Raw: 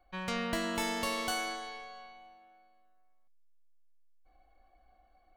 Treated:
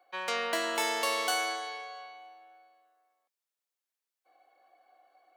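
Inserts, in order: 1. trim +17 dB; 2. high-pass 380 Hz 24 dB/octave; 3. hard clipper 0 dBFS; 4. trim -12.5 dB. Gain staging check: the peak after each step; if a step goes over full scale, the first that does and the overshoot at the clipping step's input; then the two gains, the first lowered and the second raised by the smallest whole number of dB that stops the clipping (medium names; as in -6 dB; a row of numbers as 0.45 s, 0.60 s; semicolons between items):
-2.0 dBFS, -3.5 dBFS, -3.5 dBFS, -16.0 dBFS; nothing clips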